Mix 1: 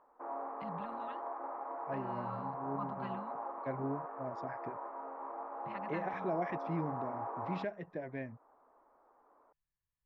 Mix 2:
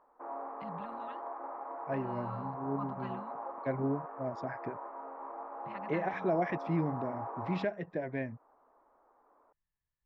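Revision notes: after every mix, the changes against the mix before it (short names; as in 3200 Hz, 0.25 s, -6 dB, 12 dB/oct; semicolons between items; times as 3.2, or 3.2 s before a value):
second voice +5.5 dB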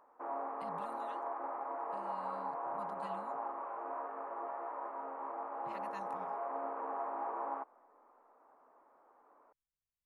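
first voice -8.0 dB; second voice: muted; master: remove air absorption 370 m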